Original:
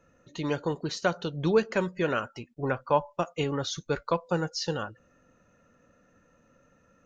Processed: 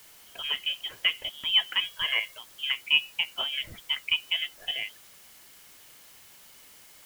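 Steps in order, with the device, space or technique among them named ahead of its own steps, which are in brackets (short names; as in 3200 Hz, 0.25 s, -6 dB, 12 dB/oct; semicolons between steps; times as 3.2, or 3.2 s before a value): scrambled radio voice (BPF 380–2700 Hz; inverted band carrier 3500 Hz; white noise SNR 21 dB); 1.84–2.38 comb 1.8 ms, depth 52%; gain +1.5 dB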